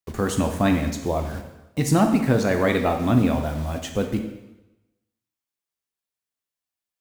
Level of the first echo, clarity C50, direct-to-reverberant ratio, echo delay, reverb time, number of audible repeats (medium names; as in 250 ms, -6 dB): no echo, 7.0 dB, 4.0 dB, no echo, 1.0 s, no echo